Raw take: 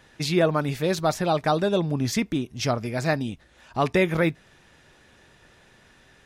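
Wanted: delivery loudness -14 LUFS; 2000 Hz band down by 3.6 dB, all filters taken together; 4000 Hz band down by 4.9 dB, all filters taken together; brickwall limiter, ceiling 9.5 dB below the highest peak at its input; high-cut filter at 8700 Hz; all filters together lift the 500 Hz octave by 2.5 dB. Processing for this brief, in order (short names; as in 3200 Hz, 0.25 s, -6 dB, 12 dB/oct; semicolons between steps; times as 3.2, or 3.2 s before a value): LPF 8700 Hz; bell 500 Hz +3.5 dB; bell 2000 Hz -3.5 dB; bell 4000 Hz -5 dB; gain +14.5 dB; limiter -3.5 dBFS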